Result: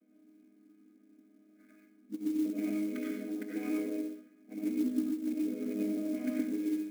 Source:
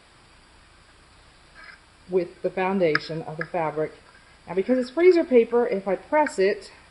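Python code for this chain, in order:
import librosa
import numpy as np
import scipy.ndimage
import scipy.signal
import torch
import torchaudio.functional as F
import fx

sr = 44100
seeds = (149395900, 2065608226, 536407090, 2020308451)

p1 = fx.chord_vocoder(x, sr, chord='minor triad', root=56)
p2 = p1 + fx.echo_feedback(p1, sr, ms=68, feedback_pct=53, wet_db=-13.5, dry=0)
p3 = fx.tube_stage(p2, sr, drive_db=17.0, bias=0.35)
p4 = fx.level_steps(p3, sr, step_db=11)
p5 = p3 + (p4 * librosa.db_to_amplitude(-1.0))
p6 = fx.hum_notches(p5, sr, base_hz=60, count=7)
p7 = fx.notch_comb(p6, sr, f0_hz=940.0)
p8 = fx.over_compress(p7, sr, threshold_db=-27.0, ratio=-0.5)
p9 = fx.env_lowpass(p8, sr, base_hz=840.0, full_db=-25.0)
p10 = fx.vowel_filter(p9, sr, vowel='i')
p11 = fx.peak_eq(p10, sr, hz=800.0, db=9.5, octaves=1.0)
p12 = fx.rev_freeverb(p11, sr, rt60_s=0.5, hf_ratio=0.55, predelay_ms=55, drr_db=-3.0)
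p13 = fx.clock_jitter(p12, sr, seeds[0], jitter_ms=0.031)
y = p13 * librosa.db_to_amplitude(-1.0)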